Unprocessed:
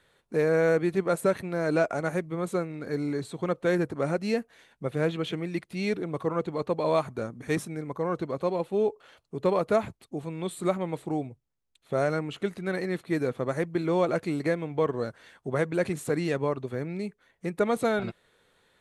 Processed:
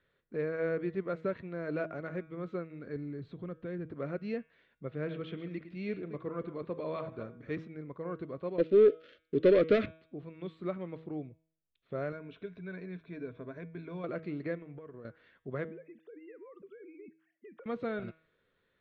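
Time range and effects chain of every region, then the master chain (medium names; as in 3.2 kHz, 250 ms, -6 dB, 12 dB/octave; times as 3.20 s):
2.96–3.89 s: bass shelf 240 Hz +11 dB + compression 2:1, threshold -34 dBFS
4.94–7.53 s: chunks repeated in reverse 135 ms, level -12 dB + de-hum 130.3 Hz, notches 29
8.58–9.86 s: waveshaping leveller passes 2 + FFT filter 190 Hz 0 dB, 280 Hz +9 dB, 580 Hz +7 dB, 840 Hz -18 dB, 1.3 kHz +2 dB, 3.7 kHz +9 dB
12.12–14.04 s: rippled EQ curve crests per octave 1.6, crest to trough 12 dB + compression 1.5:1, threshold -40 dBFS
14.55–15.05 s: low-pass 2.9 kHz 24 dB/octave + compression 8:1, threshold -34 dBFS
15.65–17.66 s: formants replaced by sine waves + compression 12:1, threshold -38 dBFS
whole clip: Bessel low-pass 2.5 kHz, order 6; peaking EQ 830 Hz -11.5 dB 0.46 oct; de-hum 160.4 Hz, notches 24; trim -8 dB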